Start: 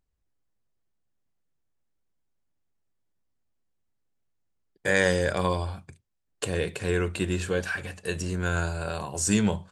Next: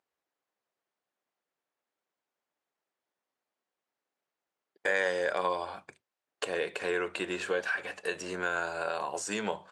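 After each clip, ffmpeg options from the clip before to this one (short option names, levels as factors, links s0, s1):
-af "highpass=540,acompressor=threshold=0.0141:ratio=2,aemphasis=mode=reproduction:type=75kf,volume=2.24"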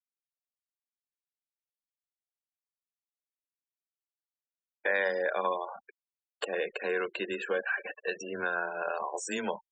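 -af "acrusher=bits=4:mode=log:mix=0:aa=0.000001,afftfilt=real='re*gte(hypot(re,im),0.0178)':imag='im*gte(hypot(re,im),0.0178)':win_size=1024:overlap=0.75,afreqshift=15"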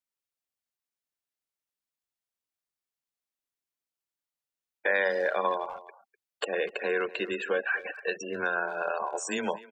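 -filter_complex "[0:a]asplit=2[s0][s1];[s1]adelay=250,highpass=300,lowpass=3400,asoftclip=type=hard:threshold=0.0596,volume=0.141[s2];[s0][s2]amix=inputs=2:normalize=0,volume=1.33"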